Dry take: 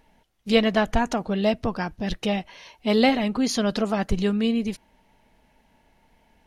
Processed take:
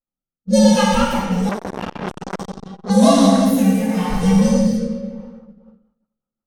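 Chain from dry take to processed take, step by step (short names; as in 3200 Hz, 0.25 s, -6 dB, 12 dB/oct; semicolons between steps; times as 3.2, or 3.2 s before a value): inharmonic rescaling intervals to 129%; plate-style reverb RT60 2.4 s, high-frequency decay 0.85×, DRR -5 dB; low-pass opened by the level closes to 1200 Hz, open at -16.5 dBFS; rotary speaker horn 0.85 Hz, later 6 Hz, at 5.08; expander -38 dBFS; 1.49–2.9 core saturation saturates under 1900 Hz; gain +4.5 dB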